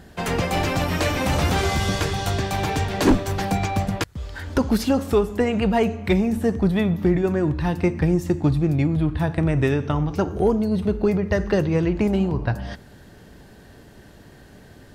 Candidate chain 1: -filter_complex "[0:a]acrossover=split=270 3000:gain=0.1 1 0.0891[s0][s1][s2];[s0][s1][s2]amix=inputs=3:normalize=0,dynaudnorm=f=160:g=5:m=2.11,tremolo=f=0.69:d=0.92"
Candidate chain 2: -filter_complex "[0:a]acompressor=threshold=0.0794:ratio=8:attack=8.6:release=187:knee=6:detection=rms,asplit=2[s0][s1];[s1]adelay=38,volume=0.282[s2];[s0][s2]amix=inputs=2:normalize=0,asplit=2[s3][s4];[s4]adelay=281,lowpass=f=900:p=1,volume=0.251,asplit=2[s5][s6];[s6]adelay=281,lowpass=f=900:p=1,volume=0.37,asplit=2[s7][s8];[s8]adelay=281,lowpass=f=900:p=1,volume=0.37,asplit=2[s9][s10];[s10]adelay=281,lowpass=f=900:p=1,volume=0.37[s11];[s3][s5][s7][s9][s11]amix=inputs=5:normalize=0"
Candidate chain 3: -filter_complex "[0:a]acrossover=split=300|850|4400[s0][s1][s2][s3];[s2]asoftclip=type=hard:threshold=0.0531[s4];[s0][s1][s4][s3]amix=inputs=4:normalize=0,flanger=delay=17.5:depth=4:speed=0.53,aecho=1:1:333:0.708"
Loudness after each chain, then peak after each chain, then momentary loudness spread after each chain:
-23.5 LUFS, -27.5 LUFS, -23.5 LUFS; -4.5 dBFS, -12.5 dBFS, -7.0 dBFS; 19 LU, 20 LU, 5 LU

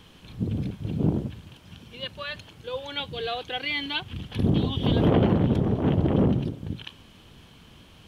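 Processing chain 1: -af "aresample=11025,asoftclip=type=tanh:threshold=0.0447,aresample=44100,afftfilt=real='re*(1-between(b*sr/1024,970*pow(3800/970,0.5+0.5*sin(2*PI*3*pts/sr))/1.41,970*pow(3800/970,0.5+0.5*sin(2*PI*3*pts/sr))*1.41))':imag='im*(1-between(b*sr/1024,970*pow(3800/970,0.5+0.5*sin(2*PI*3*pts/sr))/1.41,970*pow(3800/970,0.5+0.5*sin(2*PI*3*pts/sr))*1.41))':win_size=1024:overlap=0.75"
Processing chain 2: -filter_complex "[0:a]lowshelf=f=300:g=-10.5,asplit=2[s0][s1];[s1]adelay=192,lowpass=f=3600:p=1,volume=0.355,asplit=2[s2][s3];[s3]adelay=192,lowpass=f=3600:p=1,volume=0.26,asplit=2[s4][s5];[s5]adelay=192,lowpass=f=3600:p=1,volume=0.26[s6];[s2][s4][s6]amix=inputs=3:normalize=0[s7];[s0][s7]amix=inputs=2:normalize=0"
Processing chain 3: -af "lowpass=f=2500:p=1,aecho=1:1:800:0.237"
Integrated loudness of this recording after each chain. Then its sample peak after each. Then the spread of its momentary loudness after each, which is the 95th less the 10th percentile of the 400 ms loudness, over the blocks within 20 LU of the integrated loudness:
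-33.0 LUFS, -31.0 LUFS, -26.5 LUFS; -22.5 dBFS, -13.5 dBFS, -10.5 dBFS; 19 LU, 16 LU, 16 LU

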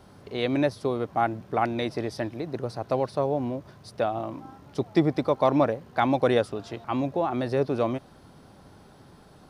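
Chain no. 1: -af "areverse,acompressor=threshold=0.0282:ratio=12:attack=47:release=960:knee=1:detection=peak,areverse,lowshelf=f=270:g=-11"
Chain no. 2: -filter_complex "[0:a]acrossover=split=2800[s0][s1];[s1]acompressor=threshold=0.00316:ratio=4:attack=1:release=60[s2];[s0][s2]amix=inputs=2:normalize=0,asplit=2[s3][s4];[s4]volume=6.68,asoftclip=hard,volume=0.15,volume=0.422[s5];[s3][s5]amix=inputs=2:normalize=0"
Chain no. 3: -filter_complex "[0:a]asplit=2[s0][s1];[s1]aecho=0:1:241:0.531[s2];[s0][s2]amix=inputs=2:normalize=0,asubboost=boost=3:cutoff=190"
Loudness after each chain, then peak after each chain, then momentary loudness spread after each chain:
-39.0 LUFS, -24.5 LUFS, -26.0 LUFS; -20.0 dBFS, -7.5 dBFS, -7.5 dBFS; 19 LU, 11 LU, 10 LU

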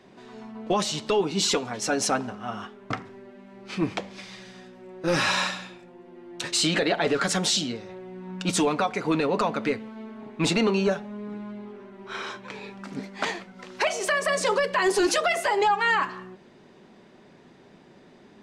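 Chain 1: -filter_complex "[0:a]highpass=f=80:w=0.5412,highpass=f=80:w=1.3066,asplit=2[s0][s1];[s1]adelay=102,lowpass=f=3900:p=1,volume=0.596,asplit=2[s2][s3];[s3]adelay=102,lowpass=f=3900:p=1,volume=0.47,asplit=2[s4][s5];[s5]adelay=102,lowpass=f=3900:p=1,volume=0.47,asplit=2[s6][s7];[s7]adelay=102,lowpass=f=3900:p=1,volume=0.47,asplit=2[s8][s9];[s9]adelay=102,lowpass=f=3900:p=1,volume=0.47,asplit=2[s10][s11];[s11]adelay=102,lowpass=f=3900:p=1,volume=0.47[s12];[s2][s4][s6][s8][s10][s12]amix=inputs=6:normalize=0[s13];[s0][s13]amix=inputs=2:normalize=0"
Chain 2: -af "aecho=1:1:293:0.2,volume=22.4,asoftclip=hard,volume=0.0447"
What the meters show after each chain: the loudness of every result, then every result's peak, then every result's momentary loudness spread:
-24.5 LUFS, -31.0 LUFS; -9.5 dBFS, -27.0 dBFS; 18 LU, 14 LU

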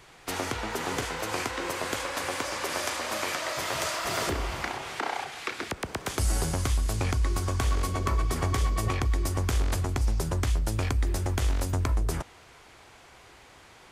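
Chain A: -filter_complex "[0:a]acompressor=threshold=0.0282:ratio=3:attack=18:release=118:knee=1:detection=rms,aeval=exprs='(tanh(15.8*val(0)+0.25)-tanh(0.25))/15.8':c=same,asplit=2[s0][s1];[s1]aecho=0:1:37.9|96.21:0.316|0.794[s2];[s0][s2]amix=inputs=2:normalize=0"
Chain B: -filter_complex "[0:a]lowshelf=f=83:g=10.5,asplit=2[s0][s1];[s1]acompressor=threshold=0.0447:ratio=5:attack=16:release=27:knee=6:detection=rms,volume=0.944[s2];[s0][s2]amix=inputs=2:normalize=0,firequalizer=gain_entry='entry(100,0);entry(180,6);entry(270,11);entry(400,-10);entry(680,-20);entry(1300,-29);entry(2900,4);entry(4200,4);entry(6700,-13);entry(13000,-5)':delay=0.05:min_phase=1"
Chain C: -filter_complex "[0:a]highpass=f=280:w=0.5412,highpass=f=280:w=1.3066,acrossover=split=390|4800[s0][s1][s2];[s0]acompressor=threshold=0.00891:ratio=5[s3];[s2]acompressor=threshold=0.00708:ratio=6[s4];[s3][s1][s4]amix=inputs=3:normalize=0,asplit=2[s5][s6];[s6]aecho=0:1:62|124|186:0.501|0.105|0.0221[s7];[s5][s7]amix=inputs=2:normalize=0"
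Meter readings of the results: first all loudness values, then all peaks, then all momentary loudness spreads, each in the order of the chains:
-32.0 LUFS, -22.0 LUFS, -32.5 LUFS; -18.5 dBFS, -8.0 dBFS, -15.5 dBFS; 9 LU, 9 LU, 13 LU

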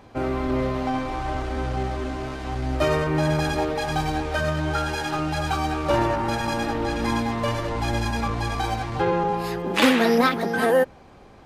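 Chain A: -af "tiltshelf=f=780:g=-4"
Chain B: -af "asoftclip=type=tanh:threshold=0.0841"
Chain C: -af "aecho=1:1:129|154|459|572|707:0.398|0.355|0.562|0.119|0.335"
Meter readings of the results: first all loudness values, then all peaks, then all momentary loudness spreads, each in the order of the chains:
-24.5 LUFS, -27.5 LUFS, -22.0 LUFS; -3.0 dBFS, -21.5 dBFS, -3.5 dBFS; 10 LU, 4 LU, 8 LU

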